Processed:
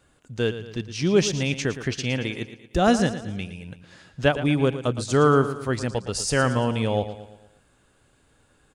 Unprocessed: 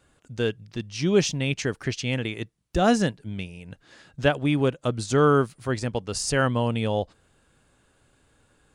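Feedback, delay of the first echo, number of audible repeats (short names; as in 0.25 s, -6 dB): 47%, 0.114 s, 4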